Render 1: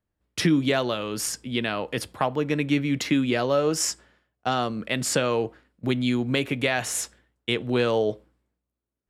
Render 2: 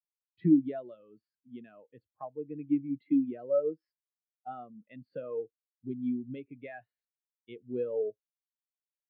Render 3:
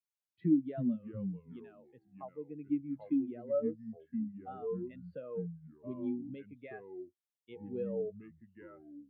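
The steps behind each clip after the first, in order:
elliptic low-pass 4.5 kHz; spectral contrast expander 2.5:1; trim -3 dB
ever faster or slower copies 213 ms, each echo -4 st, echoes 2, each echo -6 dB; trim -5 dB

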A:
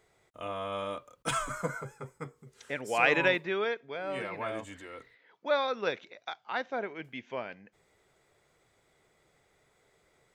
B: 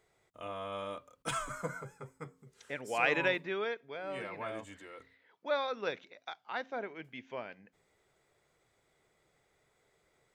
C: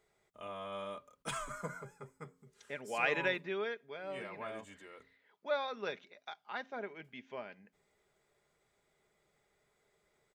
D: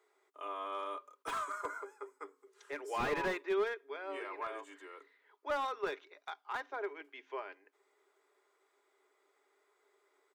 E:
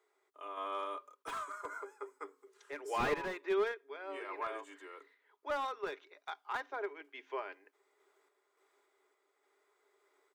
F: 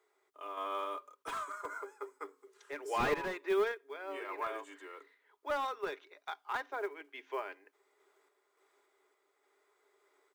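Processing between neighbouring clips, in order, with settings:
de-hum 88.52 Hz, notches 3; trim -4.5 dB
comb 4.9 ms, depth 35%; trim -3.5 dB
rippled Chebyshev high-pass 280 Hz, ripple 9 dB; slew-rate limiter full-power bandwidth 13 Hz; trim +7 dB
random-step tremolo; trim +2 dB
short-mantissa float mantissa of 4-bit; trim +1.5 dB

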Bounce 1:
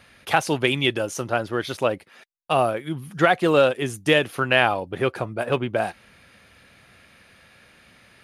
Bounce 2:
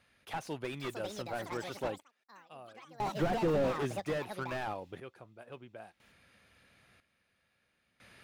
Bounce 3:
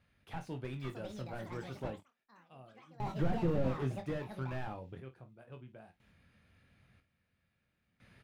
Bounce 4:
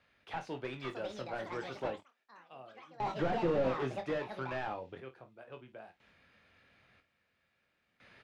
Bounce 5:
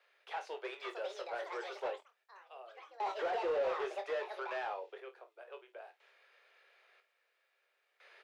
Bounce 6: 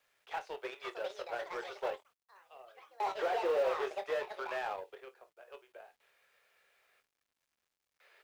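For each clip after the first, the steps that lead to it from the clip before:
ever faster or slower copies 620 ms, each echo +7 st, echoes 2, each echo -6 dB; random-step tremolo 1 Hz, depth 95%; slew-rate limiter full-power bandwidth 40 Hz; trim -5 dB
tone controls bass +12 dB, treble -5 dB; on a send: early reflections 23 ms -7.5 dB, 53 ms -14.5 dB; on the sum: trim -7.5 dB
three-band isolator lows -14 dB, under 320 Hz, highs -18 dB, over 6.7 kHz; trim +6 dB
steep high-pass 380 Hz 72 dB/octave; saturation -26 dBFS, distortion -21 dB
companding laws mixed up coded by A; trim +4.5 dB

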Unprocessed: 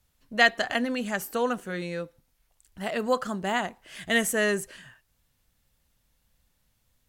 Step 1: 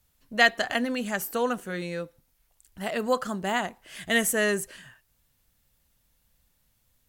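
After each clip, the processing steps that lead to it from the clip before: treble shelf 11 kHz +7.5 dB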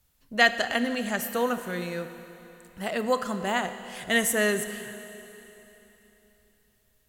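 Schroeder reverb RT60 3.4 s, combs from 26 ms, DRR 10 dB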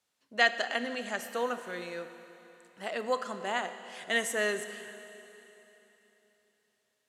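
band-pass 320–7800 Hz; trim -4.5 dB

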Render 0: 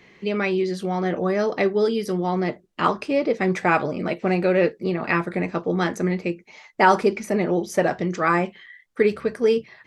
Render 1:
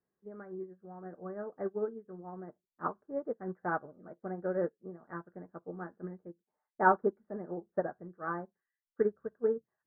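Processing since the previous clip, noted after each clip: elliptic low-pass 1.6 kHz, stop band 40 dB; band-stop 960 Hz, Q 23; upward expansion 2.5:1, over -31 dBFS; trim -6 dB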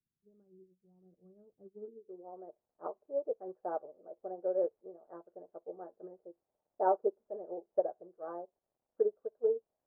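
resonant low shelf 290 Hz -12 dB, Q 1.5; crackle 370 per s -60 dBFS; low-pass sweep 170 Hz -> 640 Hz, 1.67–2.32 s; trim -7 dB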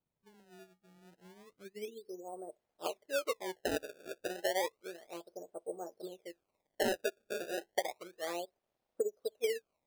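compression 10:1, threshold -33 dBFS, peak gain reduction 10.5 dB; decimation with a swept rate 24×, swing 160% 0.31 Hz; trim +3.5 dB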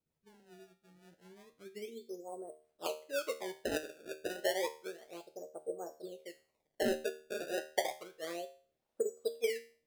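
rotary cabinet horn 5.5 Hz, later 0.7 Hz, at 5.40 s; feedback comb 77 Hz, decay 0.42 s, harmonics all, mix 70%; trim +9 dB

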